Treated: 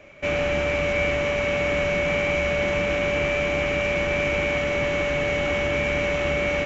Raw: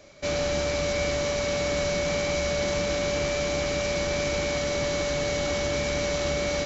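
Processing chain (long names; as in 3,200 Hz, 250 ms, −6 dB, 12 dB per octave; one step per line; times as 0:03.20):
high shelf with overshoot 3,400 Hz −9 dB, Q 3
level +2.5 dB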